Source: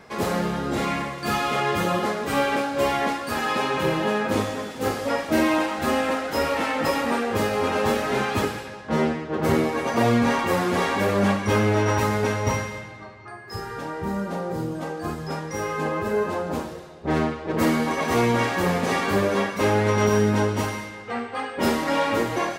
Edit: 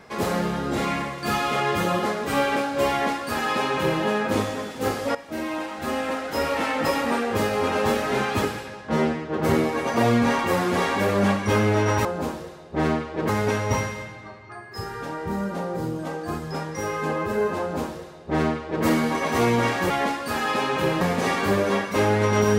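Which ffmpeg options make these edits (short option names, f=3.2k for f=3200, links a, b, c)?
-filter_complex "[0:a]asplit=6[a][b][c][d][e][f];[a]atrim=end=5.15,asetpts=PTS-STARTPTS,afade=t=out:st=5.146:d=0.004:c=hsin:silence=0.199526[g];[b]atrim=start=5.15:end=12.052,asetpts=PTS-STARTPTS,afade=t=in:d=1.51:silence=0.199526[h];[c]atrim=start=16.358:end=17.602[i];[d]atrim=start=12.048:end=18.662[j];[e]atrim=start=2.908:end=4.022[k];[f]atrim=start=18.658[l];[g][h]concat=n=2:v=0:a=1[m];[m][i]acrossfade=d=0.004:c1=hsin:c2=hsin[n];[n][j]acrossfade=d=0.004:c1=hsin:c2=hsin[o];[o][k]acrossfade=d=0.004:c1=hsin:c2=hsin[p];[p][l]acrossfade=d=0.004:c1=hsin:c2=hsin"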